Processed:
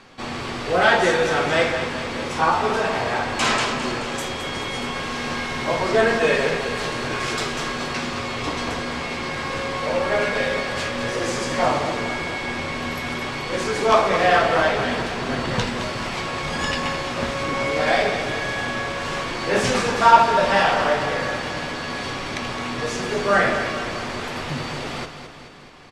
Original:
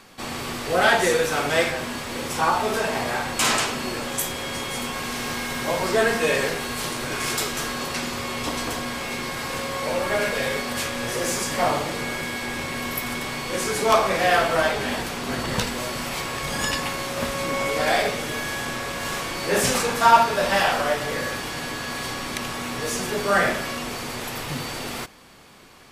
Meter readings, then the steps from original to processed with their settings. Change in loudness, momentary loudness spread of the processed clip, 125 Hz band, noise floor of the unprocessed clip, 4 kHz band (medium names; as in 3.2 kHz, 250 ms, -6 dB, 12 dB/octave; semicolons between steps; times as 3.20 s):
+2.0 dB, 10 LU, +3.0 dB, -32 dBFS, +0.5 dB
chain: flange 0.26 Hz, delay 7.4 ms, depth 6.9 ms, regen -63%; distance through air 94 m; on a send: feedback delay 215 ms, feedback 58%, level -9.5 dB; on the sum: trim +6.5 dB